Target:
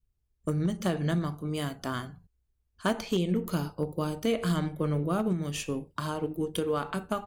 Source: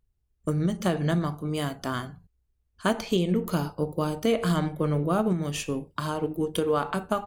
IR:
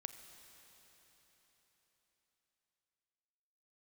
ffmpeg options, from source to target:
-af "adynamicequalizer=threshold=0.0112:dfrequency=770:dqfactor=0.96:tfrequency=770:tqfactor=0.96:attack=5:release=100:ratio=0.375:range=2.5:mode=cutabove:tftype=bell,volume=6.68,asoftclip=hard,volume=0.15,volume=0.75"

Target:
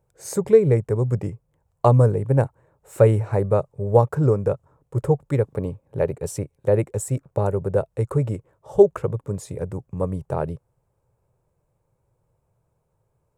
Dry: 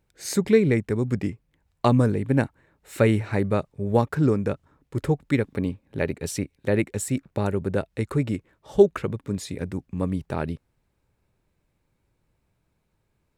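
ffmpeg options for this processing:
-af "equalizer=f=125:t=o:w=1:g=10,equalizer=f=250:t=o:w=1:g=-9,equalizer=f=500:t=o:w=1:g=10,equalizer=f=1000:t=o:w=1:g=6,equalizer=f=2000:t=o:w=1:g=-7,equalizer=f=4000:t=o:w=1:g=-9,equalizer=f=8000:t=o:w=1:g=4,volume=0.75"

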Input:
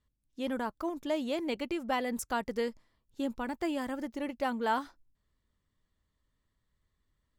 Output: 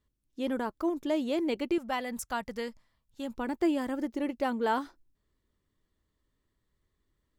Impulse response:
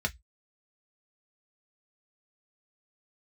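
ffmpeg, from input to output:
-af "asetnsamples=n=441:p=0,asendcmd='1.78 equalizer g -8.5;3.36 equalizer g 8',equalizer=f=360:t=o:w=0.8:g=6.5"

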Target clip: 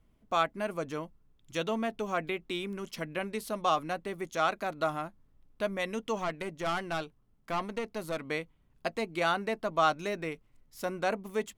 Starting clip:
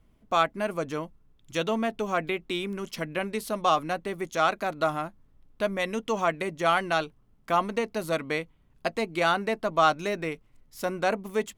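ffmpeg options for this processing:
-filter_complex "[0:a]asettb=1/sr,asplit=3[s0][s1][s2];[s0]atrim=end=6.184[s3];[s1]atrim=start=6.18:end=8.25,asetpts=PTS-STARTPTS,afade=t=in:d=0.004:c=qsin,afade=t=out:st=2.066:d=0.004:c=qsin,aeval=exprs='(tanh(11.2*val(0)+0.45)-tanh(0.45))/11.2':c=same[s4];[s2]atrim=start=8.246[s5];[s3][s4]acrossfade=d=0.004:c1=hsin:c2=qsin[s6];[s6][s5]acrossfade=d=0.004:c1=qsin:c2=hsin,volume=0.596"

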